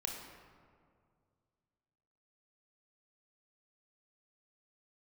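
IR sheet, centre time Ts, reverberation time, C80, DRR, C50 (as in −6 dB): 64 ms, 2.2 s, 4.5 dB, 0.5 dB, 3.0 dB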